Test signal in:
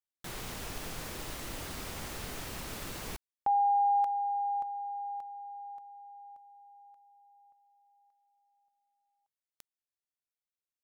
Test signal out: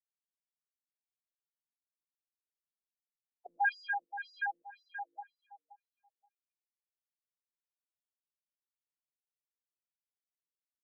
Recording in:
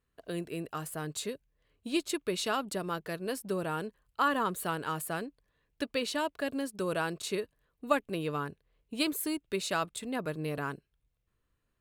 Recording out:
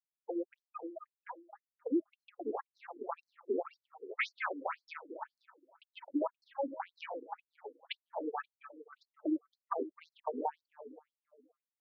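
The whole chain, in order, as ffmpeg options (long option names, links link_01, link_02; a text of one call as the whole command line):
ffmpeg -i in.wav -filter_complex "[0:a]highpass=99,aemphasis=mode=reproduction:type=75fm,bandreject=frequency=50:width_type=h:width=6,bandreject=frequency=100:width_type=h:width=6,bandreject=frequency=150:width_type=h:width=6,afftfilt=real='re*gte(hypot(re,im),0.112)':imag='im*gte(hypot(re,im),0.112)':win_size=1024:overlap=0.75,equalizer=frequency=2100:width=1.9:gain=-14.5,acompressor=threshold=-35dB:ratio=4:attack=1.7:release=449:knee=1:detection=rms,aeval=exprs='0.0447*(cos(1*acos(clip(val(0)/0.0447,-1,1)))-cos(1*PI/2))+0.000794*(cos(6*acos(clip(val(0)/0.0447,-1,1)))-cos(6*PI/2))+0.00158*(cos(7*acos(clip(val(0)/0.0447,-1,1)))-cos(7*PI/2))':channel_layout=same,asplit=2[link_01][link_02];[link_02]aecho=0:1:264|528|792|1056|1320:0.376|0.162|0.0695|0.0299|0.0128[link_03];[link_01][link_03]amix=inputs=2:normalize=0,aeval=exprs='0.0473*(cos(1*acos(clip(val(0)/0.0473,-1,1)))-cos(1*PI/2))+0.00376*(cos(3*acos(clip(val(0)/0.0473,-1,1)))-cos(3*PI/2))+0.0237*(cos(4*acos(clip(val(0)/0.0473,-1,1)))-cos(4*PI/2))':channel_layout=same,afftfilt=real='re*between(b*sr/1024,330*pow(5900/330,0.5+0.5*sin(2*PI*1.9*pts/sr))/1.41,330*pow(5900/330,0.5+0.5*sin(2*PI*1.9*pts/sr))*1.41)':imag='im*between(b*sr/1024,330*pow(5900/330,0.5+0.5*sin(2*PI*1.9*pts/sr))/1.41,330*pow(5900/330,0.5+0.5*sin(2*PI*1.9*pts/sr))*1.41)':win_size=1024:overlap=0.75,volume=11dB" out.wav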